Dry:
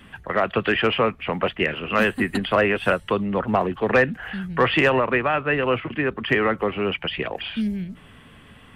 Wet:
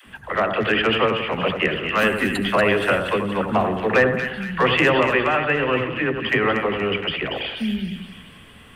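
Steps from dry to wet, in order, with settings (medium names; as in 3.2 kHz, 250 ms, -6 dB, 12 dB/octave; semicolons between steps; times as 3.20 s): treble shelf 4 kHz +6.5 dB; phase dispersion lows, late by 60 ms, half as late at 320 Hz; on a send: two-band feedback delay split 1.7 kHz, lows 86 ms, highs 236 ms, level -6.5 dB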